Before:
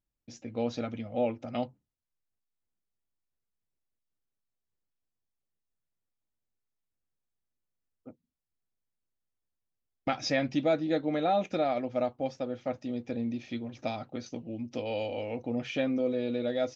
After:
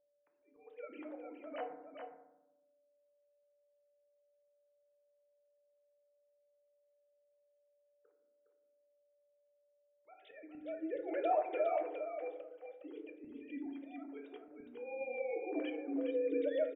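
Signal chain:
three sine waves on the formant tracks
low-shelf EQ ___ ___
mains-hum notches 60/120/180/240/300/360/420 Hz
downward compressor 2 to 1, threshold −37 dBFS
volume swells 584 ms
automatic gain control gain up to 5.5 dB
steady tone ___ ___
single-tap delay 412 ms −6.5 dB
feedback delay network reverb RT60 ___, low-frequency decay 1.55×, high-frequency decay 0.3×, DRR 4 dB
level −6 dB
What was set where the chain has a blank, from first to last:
230 Hz, −9 dB, 580 Hz, −70 dBFS, 0.88 s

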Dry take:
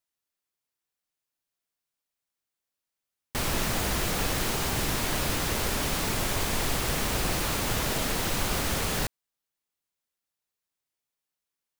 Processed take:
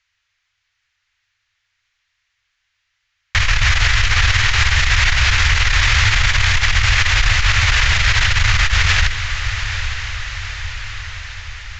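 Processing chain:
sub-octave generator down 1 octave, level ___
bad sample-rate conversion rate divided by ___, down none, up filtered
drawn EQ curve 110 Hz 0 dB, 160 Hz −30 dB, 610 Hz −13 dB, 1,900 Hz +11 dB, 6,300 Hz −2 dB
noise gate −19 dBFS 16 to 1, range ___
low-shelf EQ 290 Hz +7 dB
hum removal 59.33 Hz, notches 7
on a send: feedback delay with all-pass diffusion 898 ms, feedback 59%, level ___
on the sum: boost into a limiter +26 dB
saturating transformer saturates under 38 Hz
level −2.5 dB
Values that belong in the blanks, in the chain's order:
0 dB, 3×, −11 dB, −13 dB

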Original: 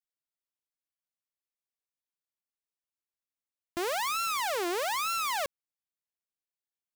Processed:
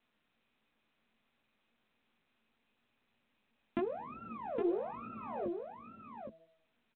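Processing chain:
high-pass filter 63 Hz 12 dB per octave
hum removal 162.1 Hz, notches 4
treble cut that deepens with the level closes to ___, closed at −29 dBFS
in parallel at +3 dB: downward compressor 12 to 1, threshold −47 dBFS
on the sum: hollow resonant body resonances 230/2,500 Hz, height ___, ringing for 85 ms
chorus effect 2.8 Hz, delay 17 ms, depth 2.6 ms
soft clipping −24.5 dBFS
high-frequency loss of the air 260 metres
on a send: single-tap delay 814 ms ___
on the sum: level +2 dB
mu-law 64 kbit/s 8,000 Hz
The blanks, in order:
370 Hz, 17 dB, −6 dB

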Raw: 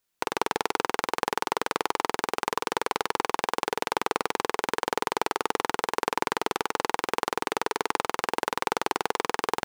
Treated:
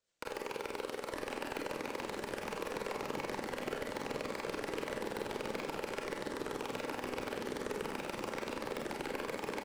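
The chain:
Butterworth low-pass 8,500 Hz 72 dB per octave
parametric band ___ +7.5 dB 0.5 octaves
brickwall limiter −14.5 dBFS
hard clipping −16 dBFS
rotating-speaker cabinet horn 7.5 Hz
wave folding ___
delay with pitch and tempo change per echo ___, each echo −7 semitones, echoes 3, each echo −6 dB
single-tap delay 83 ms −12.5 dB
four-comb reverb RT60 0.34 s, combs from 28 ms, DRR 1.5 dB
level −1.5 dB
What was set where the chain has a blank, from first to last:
550 Hz, −27 dBFS, 751 ms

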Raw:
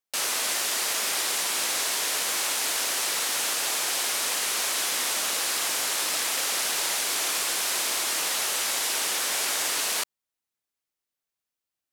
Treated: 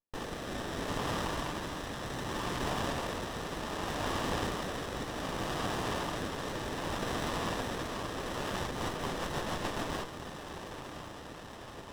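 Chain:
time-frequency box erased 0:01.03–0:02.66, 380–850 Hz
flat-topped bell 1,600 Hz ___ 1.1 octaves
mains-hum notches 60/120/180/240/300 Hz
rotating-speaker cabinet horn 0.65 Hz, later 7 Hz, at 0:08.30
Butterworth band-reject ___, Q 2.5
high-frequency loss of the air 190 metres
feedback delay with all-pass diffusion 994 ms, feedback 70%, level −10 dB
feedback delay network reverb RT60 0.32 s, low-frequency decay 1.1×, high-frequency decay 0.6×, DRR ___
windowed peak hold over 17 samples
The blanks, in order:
+10 dB, 1,400 Hz, 8 dB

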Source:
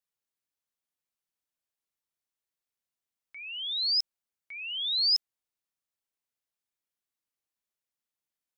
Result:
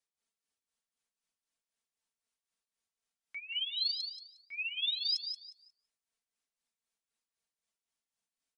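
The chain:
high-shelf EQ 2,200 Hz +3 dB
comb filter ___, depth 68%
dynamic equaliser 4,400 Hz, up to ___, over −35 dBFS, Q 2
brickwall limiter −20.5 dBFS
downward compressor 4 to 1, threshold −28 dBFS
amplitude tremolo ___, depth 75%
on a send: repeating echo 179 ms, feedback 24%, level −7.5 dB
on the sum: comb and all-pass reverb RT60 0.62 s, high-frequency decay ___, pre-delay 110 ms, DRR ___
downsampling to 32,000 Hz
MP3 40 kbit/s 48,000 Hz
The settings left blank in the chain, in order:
4.4 ms, −4 dB, 3.9 Hz, 0.3×, 18.5 dB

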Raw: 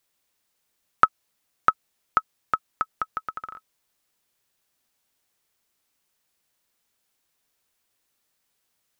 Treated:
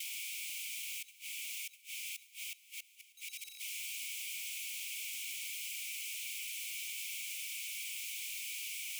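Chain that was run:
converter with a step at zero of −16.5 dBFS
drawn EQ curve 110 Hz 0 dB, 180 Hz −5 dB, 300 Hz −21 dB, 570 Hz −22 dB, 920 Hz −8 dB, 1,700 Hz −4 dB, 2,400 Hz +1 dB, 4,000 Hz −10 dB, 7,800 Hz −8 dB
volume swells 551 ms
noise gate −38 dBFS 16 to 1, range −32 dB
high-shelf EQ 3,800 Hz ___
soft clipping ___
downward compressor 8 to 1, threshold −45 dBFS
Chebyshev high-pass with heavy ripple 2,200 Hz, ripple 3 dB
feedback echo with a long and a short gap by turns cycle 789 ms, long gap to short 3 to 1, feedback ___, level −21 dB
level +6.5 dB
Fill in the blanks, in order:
−7.5 dB, −39.5 dBFS, 46%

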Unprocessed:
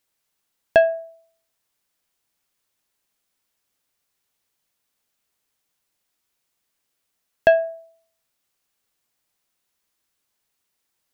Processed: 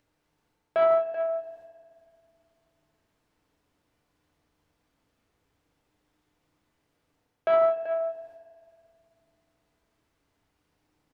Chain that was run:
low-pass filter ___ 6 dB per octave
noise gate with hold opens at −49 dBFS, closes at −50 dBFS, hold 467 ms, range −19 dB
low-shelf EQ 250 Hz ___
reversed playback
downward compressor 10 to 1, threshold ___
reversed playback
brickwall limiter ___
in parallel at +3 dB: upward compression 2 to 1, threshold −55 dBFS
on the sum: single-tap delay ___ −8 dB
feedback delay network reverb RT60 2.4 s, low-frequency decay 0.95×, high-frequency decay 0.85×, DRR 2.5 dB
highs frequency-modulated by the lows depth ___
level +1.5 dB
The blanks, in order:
1,000 Hz, +7 dB, −26 dBFS, −27 dBFS, 385 ms, 0.25 ms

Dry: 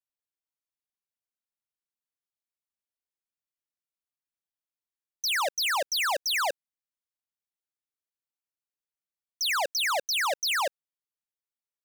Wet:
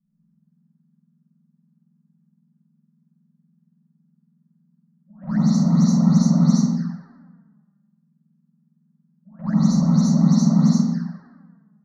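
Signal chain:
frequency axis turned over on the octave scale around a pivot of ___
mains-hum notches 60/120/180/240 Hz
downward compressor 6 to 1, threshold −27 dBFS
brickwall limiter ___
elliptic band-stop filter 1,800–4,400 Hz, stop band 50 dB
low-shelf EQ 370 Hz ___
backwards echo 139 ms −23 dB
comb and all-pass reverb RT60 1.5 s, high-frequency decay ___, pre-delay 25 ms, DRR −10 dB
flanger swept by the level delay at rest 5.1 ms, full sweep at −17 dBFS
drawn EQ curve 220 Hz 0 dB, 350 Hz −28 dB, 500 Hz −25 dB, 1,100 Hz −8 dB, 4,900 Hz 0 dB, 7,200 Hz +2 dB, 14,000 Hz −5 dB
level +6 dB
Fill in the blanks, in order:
1,800 Hz, −24 dBFS, +11 dB, 0.6×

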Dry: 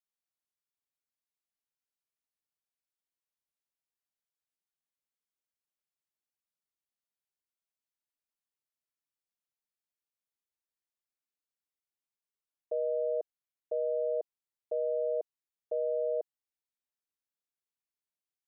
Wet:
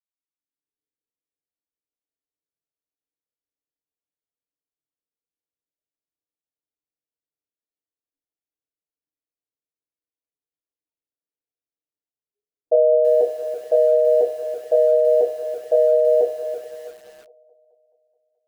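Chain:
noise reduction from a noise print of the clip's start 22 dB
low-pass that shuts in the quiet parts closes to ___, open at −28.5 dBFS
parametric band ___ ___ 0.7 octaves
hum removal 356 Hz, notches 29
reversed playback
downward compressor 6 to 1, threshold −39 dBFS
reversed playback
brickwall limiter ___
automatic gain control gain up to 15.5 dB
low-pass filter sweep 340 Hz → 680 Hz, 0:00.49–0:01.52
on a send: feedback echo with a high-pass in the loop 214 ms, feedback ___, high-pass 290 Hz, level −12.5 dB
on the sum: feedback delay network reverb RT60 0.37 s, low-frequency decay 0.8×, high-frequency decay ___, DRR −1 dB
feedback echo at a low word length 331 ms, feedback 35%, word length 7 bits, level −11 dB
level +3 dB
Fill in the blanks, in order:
410 Hz, 410 Hz, +4 dB, −35.5 dBFS, 68%, 0.7×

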